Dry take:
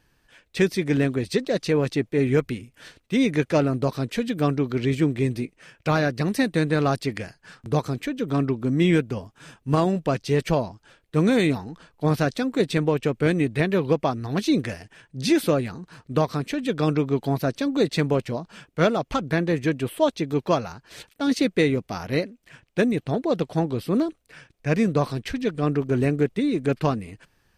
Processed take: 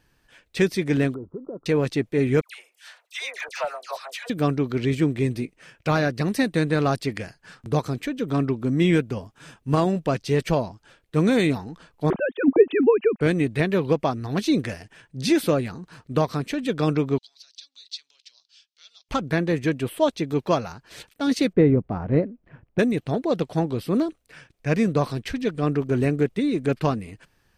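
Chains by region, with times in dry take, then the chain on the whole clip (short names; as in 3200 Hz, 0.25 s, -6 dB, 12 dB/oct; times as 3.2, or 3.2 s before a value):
1.14–1.66 compressor 10:1, threshold -27 dBFS + rippled Chebyshev low-pass 1400 Hz, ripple 6 dB
2.41–4.3 steep high-pass 650 Hz + hard clip -19 dBFS + dispersion lows, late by 86 ms, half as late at 1400 Hz
12.1–13.21 sine-wave speech + low shelf 290 Hz +11 dB
17.18–19.09 compressor, threshold -25 dBFS + Butterworth band-pass 4600 Hz, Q 1.8
21.53–22.79 LPF 1200 Hz + low shelf 340 Hz +7.5 dB
whole clip: dry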